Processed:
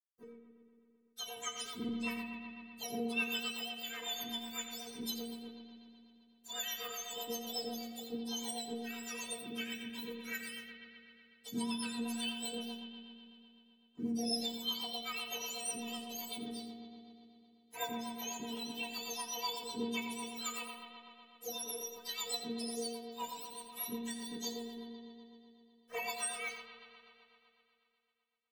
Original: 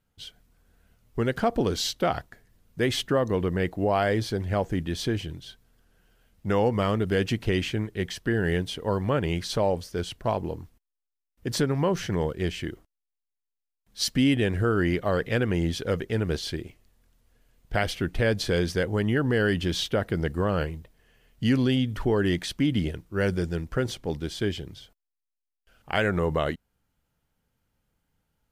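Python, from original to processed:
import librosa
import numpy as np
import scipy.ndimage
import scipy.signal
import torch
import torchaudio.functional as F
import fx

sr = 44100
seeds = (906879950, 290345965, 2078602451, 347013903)

p1 = fx.octave_mirror(x, sr, pivot_hz=1200.0)
p2 = fx.low_shelf(p1, sr, hz=390.0, db=-4.5)
p3 = fx.rider(p2, sr, range_db=10, speed_s=0.5)
p4 = p2 + (p3 * 10.0 ** (-1.0 / 20.0))
p5 = np.sign(p4) * np.maximum(np.abs(p4) - 10.0 ** (-42.5 / 20.0), 0.0)
p6 = fx.stiff_resonator(p5, sr, f0_hz=230.0, decay_s=0.47, stiffness=0.008)
p7 = fx.rev_spring(p6, sr, rt60_s=2.8, pass_ms=(56,), chirp_ms=25, drr_db=3.5)
p8 = fx.rotary(p7, sr, hz=8.0)
p9 = p8 + fx.echo_single(p8, sr, ms=86, db=-11.5, dry=0)
y = p9 * 10.0 ** (1.5 / 20.0)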